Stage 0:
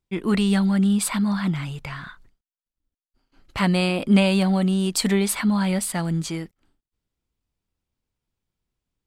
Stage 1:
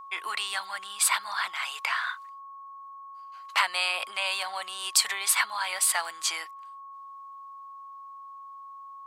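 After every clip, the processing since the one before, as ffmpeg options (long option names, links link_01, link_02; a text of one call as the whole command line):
ffmpeg -i in.wav -af "acompressor=threshold=-26dB:ratio=6,highpass=frequency=870:width=0.5412,highpass=frequency=870:width=1.3066,aeval=exprs='val(0)+0.00316*sin(2*PI*1100*n/s)':channel_layout=same,volume=8.5dB" out.wav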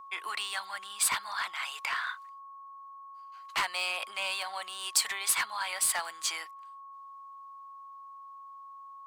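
ffmpeg -i in.wav -filter_complex "[0:a]acrossover=split=670|6100[link_01][link_02][link_03];[link_02]volume=22dB,asoftclip=hard,volume=-22dB[link_04];[link_03]acrusher=bits=3:mode=log:mix=0:aa=0.000001[link_05];[link_01][link_04][link_05]amix=inputs=3:normalize=0,volume=-3.5dB" out.wav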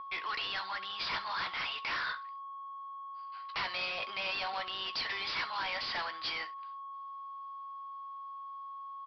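ffmpeg -i in.wav -af "aresample=11025,asoftclip=type=tanh:threshold=-38.5dB,aresample=44100,aecho=1:1:16|68:0.299|0.15,volume=5.5dB" out.wav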